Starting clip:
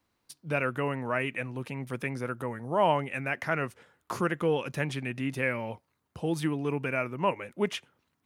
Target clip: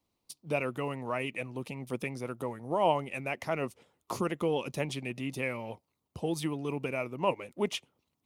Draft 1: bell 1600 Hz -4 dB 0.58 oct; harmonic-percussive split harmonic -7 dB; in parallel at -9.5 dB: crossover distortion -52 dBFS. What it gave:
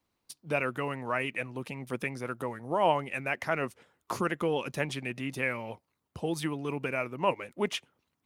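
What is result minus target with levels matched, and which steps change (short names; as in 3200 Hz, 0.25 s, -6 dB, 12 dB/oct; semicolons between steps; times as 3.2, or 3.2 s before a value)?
2000 Hz band +3.5 dB
change: bell 1600 Hz -15.5 dB 0.58 oct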